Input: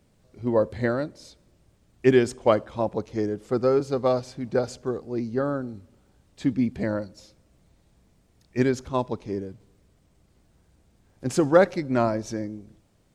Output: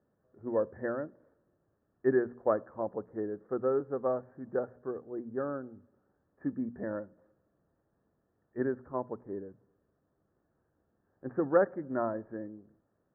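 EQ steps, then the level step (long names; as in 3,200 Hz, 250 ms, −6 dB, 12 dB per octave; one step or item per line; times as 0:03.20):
high-pass filter 180 Hz 6 dB per octave
Chebyshev low-pass with heavy ripple 1,800 Hz, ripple 3 dB
mains-hum notches 60/120/180/240 Hz
−7.0 dB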